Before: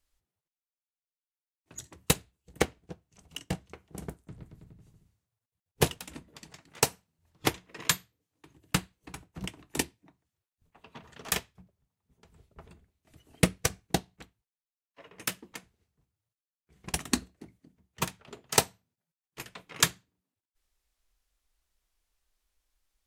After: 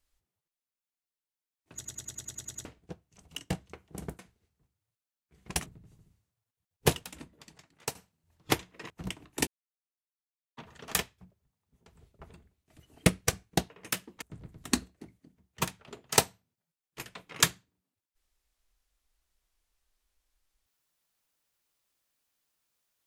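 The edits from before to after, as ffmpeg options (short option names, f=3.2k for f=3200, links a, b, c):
-filter_complex "[0:a]asplit=19[a][b][c][d][e][f][g][h][i][j][k][l][m][n][o][p][q][r][s];[a]atrim=end=1.852[t];[b]atrim=start=1.748:end=1.852[u];[c]atrim=start=1.748:end=1.852[v];[d]atrim=start=1.748:end=1.852[w];[e]atrim=start=1.748:end=1.852[x];[f]atrim=start=1.748:end=1.852[y];[g]atrim=start=1.748:end=1.852[z];[h]atrim=start=1.748:end=1.852[aa];[i]atrim=start=1.748:end=1.852[ab];[j]atrim=start=2.648:end=4.192[ac];[k]atrim=start=15.568:end=17.042[ad];[l]atrim=start=4.608:end=6.9,asetpts=PTS-STARTPTS,afade=t=out:st=1.222:d=1.07:silence=0.251189[ae];[m]atrim=start=6.9:end=7.852,asetpts=PTS-STARTPTS,afade=t=in:d=0.004:c=hsin:silence=0.251189[af];[n]atrim=start=9.268:end=9.84,asetpts=PTS-STARTPTS,afade=t=out:st=0.568:d=0.004:c=hsin[ag];[o]atrim=start=9.84:end=10.94,asetpts=PTS-STARTPTS,volume=0[ah];[p]atrim=start=10.94:end=14.072,asetpts=PTS-STARTPTS,afade=t=in:d=0.004:c=hsin[ai];[q]atrim=start=15.048:end=15.572[aj];[r]atrim=start=4.188:end=4.612[ak];[s]atrim=start=17.038[al];[t][u]acrossfade=d=0.004:c1=hsin:c2=hsin[am];[am][v]acrossfade=d=0.004:c1=hsin:c2=hsin[an];[an][w]acrossfade=d=0.004:c1=hsin:c2=hsin[ao];[ao][x]acrossfade=d=0.004:c1=hsin:c2=hsin[ap];[ap][y]acrossfade=d=0.004:c1=hsin:c2=hsin[aq];[aq][z]acrossfade=d=0.004:c1=hsin:c2=hsin[ar];[ar][aa]acrossfade=d=0.004:c1=hsin:c2=hsin[as];[as][ab]acrossfade=d=0.004:c1=hsin:c2=hsin[at];[at][ac]acrossfade=d=0.004:c1=hsin:c2=hsin[au];[au][ad]acrossfade=d=0.004:c1=hsin:c2=hsin[av];[ae][af]concat=n=2:v=0:a=1[aw];[av][aw]acrossfade=d=0.004:c1=hsin:c2=hsin[ax];[ag][ah][ai]concat=n=3:v=0:a=1[ay];[ax][ay]acrossfade=d=0.004:c1=hsin:c2=hsin[az];[az][aj]acrossfade=d=0.004:c1=hsin:c2=hsin[ba];[ba][ak]acrossfade=d=0.004:c1=hsin:c2=hsin[bb];[bb][al]acrossfade=d=0.004:c1=hsin:c2=hsin"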